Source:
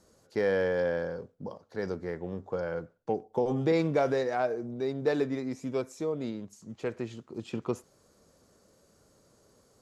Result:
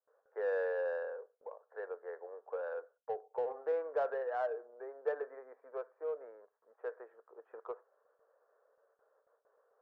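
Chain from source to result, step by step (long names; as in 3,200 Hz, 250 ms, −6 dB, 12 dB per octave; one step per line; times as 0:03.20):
Chebyshev band-pass filter 450–1,700 Hz, order 4
noise gate with hold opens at −59 dBFS
in parallel at −7.5 dB: soft clipping −32 dBFS, distortion −8 dB
on the sum: level −7.5 dB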